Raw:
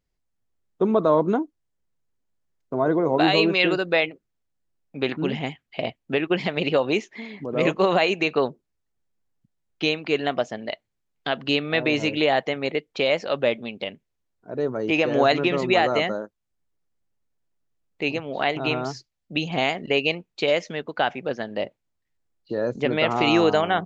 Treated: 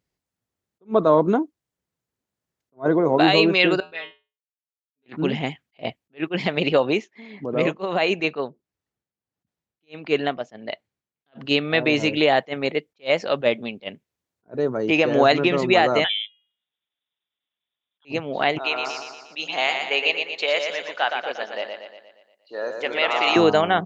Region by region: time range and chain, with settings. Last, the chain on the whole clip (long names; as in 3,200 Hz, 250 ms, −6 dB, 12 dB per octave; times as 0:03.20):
0:03.80–0:05.06: noise gate −38 dBFS, range −25 dB + low-pass filter 5,300 Hz + tuned comb filter 85 Hz, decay 0.29 s, harmonics odd, mix 100%
0:06.84–0:11.41: high-shelf EQ 6,400 Hz −7 dB + amplitude tremolo 1.5 Hz, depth 66%
0:16.04–0:18.05: high-pass filter 110 Hz + hum removal 415.7 Hz, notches 4 + voice inversion scrambler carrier 3,700 Hz
0:18.58–0:23.36: high-pass filter 700 Hz + repeating echo 118 ms, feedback 53%, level −5.5 dB
whole clip: high-pass filter 83 Hz; level that may rise only so fast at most 390 dB per second; level +2.5 dB